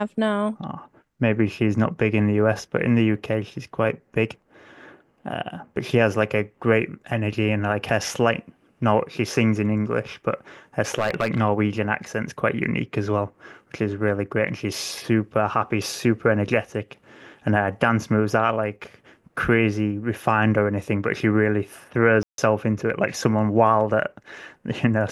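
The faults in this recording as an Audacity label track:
10.980000	11.400000	clipped -16 dBFS
22.230000	22.380000	gap 0.152 s

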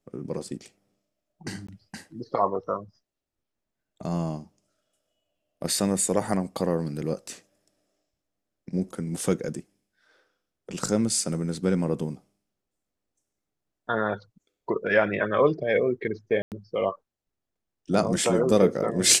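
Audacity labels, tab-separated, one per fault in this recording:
1.670000	1.690000	gap 15 ms
16.420000	16.520000	gap 98 ms

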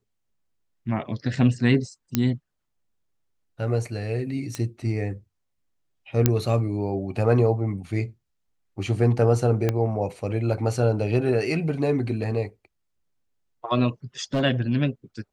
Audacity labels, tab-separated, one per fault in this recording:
2.150000	2.150000	pop -6 dBFS
4.550000	4.550000	pop -15 dBFS
6.260000	6.260000	pop -3 dBFS
9.690000	9.690000	pop -10 dBFS
14.240000	14.420000	clipped -19 dBFS

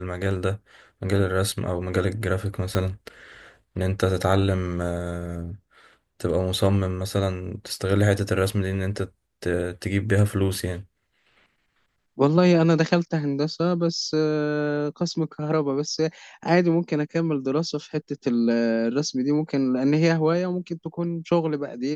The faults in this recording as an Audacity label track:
2.750000	2.750000	pop -10 dBFS

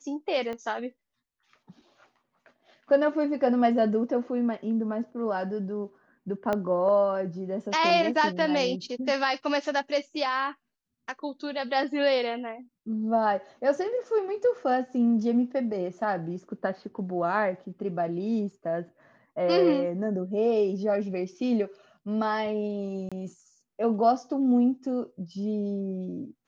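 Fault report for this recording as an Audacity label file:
0.530000	0.530000	pop -24 dBFS
6.530000	6.530000	pop -15 dBFS
23.090000	23.120000	gap 26 ms

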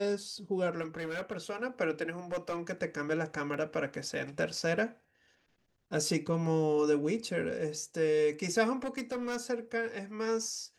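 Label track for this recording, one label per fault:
0.810000	1.370000	clipped -33 dBFS
2.320000	2.720000	clipped -29.5 dBFS
3.540000	3.540000	gap 2.7 ms
8.770000	9.380000	clipped -31 dBFS

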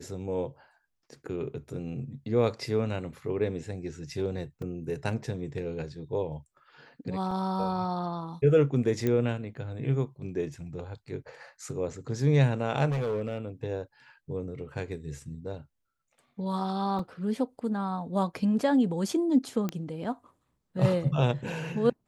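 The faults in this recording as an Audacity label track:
4.620000	4.620000	gap 2.7 ms
7.310000	7.310000	gap 3.6 ms
9.070000	9.070000	pop -16 dBFS
12.890000	13.380000	clipped -26 dBFS
16.990000	16.990000	gap 3.7 ms
19.690000	19.690000	pop -17 dBFS

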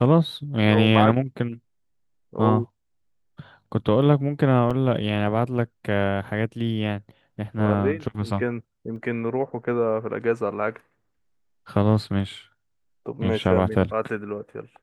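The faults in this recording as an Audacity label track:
4.700000	4.710000	gap 5.9 ms
8.960000	8.960000	gap 2.6 ms

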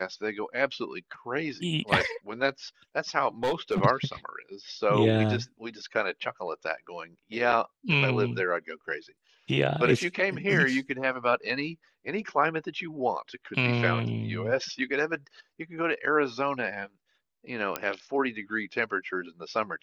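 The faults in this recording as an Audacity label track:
3.430000	3.810000	clipped -22 dBFS
17.760000	17.760000	pop -13 dBFS

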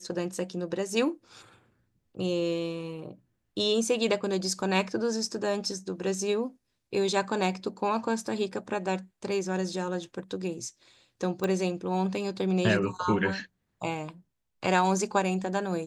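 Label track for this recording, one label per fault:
11.440000	11.440000	pop -17 dBFS

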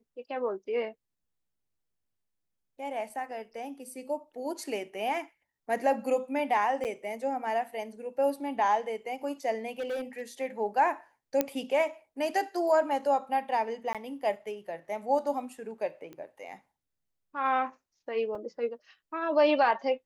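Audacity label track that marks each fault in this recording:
6.840000	6.850000	gap 8.7 ms
9.710000	10.220000	clipped -29.5 dBFS
11.410000	11.410000	pop -11 dBFS
13.930000	13.950000	gap 17 ms
16.130000	16.130000	pop -32 dBFS
18.350000	18.350000	gap 3.7 ms

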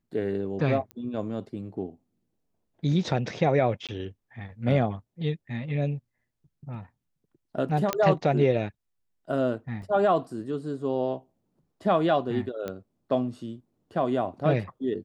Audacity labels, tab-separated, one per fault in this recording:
0.910000	0.910000	pop -25 dBFS
3.870000	3.890000	gap 17 ms
7.930000	7.930000	pop -9 dBFS
9.820000	9.820000	gap 2.2 ms
12.680000	12.680000	pop -20 dBFS

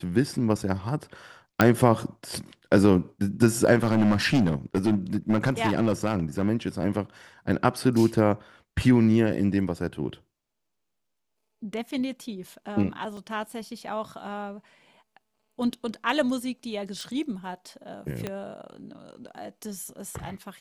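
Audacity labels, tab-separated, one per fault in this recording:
1.610000	1.610000	pop -5 dBFS
3.760000	6.490000	clipped -16.5 dBFS
13.170000	13.170000	gap 2.8 ms
17.010000	17.010000	pop
18.270000	18.270000	pop -16 dBFS

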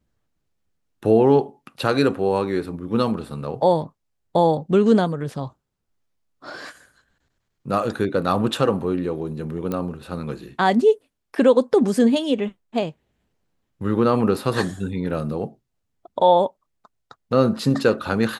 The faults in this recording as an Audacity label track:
9.720000	9.720000	pop -14 dBFS

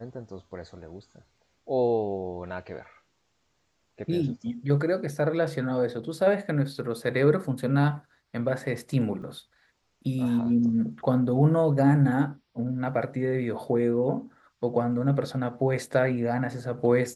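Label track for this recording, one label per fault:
9.220000	9.220000	gap 3.3 ms

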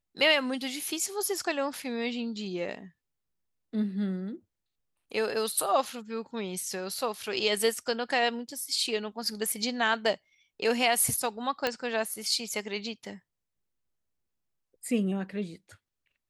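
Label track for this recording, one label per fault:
11.670000	11.670000	pop -12 dBFS

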